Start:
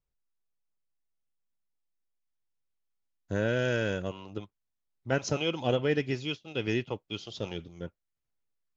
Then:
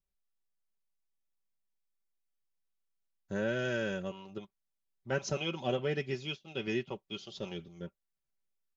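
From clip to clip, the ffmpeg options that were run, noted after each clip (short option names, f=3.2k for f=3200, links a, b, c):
-af "aecho=1:1:5.2:0.6,volume=-5.5dB"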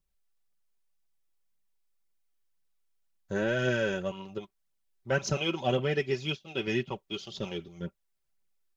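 -af "aphaser=in_gain=1:out_gain=1:delay=3.2:decay=0.37:speed=1.9:type=triangular,volume=4.5dB"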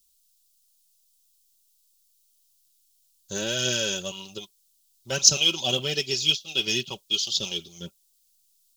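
-af "aexciter=amount=13.9:drive=4.5:freq=3k,volume=-2.5dB"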